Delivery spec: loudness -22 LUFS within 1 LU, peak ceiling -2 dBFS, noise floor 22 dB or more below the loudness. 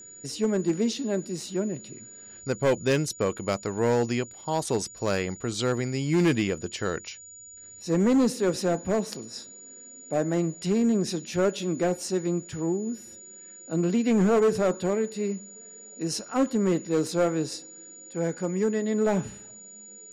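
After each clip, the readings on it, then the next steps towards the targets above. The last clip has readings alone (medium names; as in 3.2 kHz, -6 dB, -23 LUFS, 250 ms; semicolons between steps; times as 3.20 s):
clipped samples 1.3%; clipping level -17.0 dBFS; steady tone 6.9 kHz; tone level -44 dBFS; loudness -27.0 LUFS; peak level -17.0 dBFS; loudness target -22.0 LUFS
-> clip repair -17 dBFS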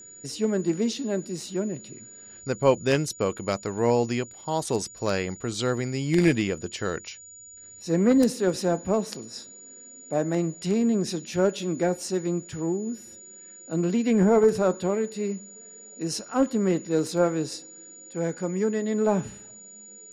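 clipped samples 0.0%; steady tone 6.9 kHz; tone level -44 dBFS
-> band-stop 6.9 kHz, Q 30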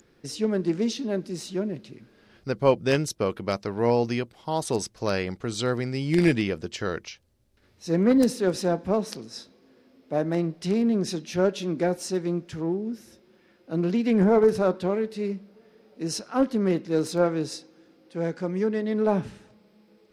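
steady tone not found; loudness -26.0 LUFS; peak level -8.0 dBFS; loudness target -22.0 LUFS
-> trim +4 dB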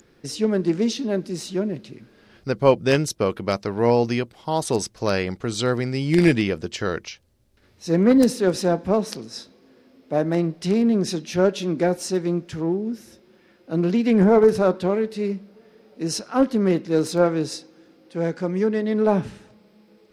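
loudness -22.0 LUFS; peak level -4.0 dBFS; noise floor -57 dBFS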